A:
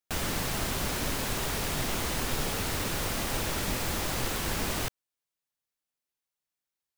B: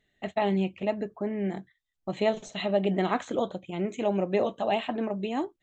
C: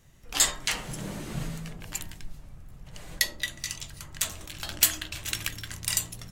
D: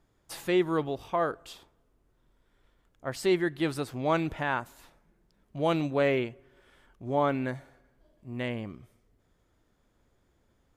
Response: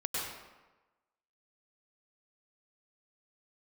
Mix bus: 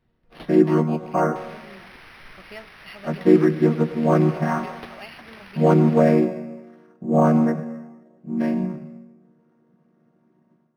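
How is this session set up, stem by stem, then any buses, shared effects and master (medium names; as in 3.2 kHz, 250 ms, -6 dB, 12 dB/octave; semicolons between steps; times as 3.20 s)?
0.0 dB, 1.25 s, no send, band-pass filter 5.4 kHz, Q 4.3
-16.5 dB, 0.30 s, no send, high-order bell 1.9 kHz +14 dB
-11.0 dB, 0.00 s, no send, auto duck -8 dB, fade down 0.50 s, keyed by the fourth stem
-0.5 dB, 0.00 s, send -13.5 dB, vocoder on a held chord minor triad, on D#3; level rider gain up to 11.5 dB; Bessel low-pass 2.6 kHz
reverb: on, RT60 1.2 s, pre-delay 93 ms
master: decimation joined by straight lines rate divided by 6×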